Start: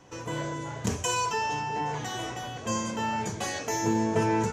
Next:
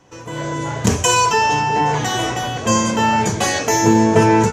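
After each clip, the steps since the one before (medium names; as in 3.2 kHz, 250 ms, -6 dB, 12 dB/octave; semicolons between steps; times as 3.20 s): level rider gain up to 12 dB; trim +2 dB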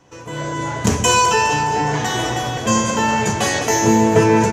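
doubling 14 ms -12 dB; two-band feedback delay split 480 Hz, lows 145 ms, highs 207 ms, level -9 dB; trim -1 dB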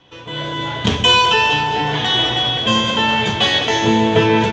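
resonant low-pass 3.4 kHz, resonance Q 7.3; trim -1 dB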